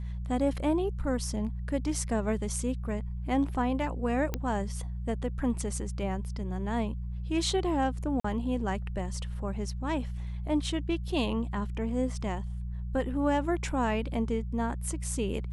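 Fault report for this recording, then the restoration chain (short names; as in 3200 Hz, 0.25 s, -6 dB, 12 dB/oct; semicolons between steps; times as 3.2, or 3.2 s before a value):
hum 60 Hz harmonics 3 -35 dBFS
4.34 pop -16 dBFS
8.2–8.24 gap 44 ms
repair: de-click; de-hum 60 Hz, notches 3; interpolate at 8.2, 44 ms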